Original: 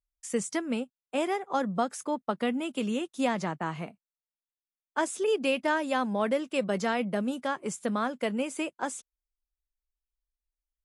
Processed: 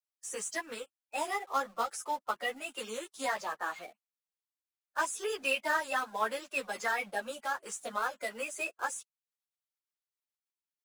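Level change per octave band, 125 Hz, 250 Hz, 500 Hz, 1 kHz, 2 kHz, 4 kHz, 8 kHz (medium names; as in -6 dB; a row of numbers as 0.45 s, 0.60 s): under -20 dB, -18.5 dB, -8.5 dB, -2.0 dB, +1.0 dB, -2.5 dB, 0.0 dB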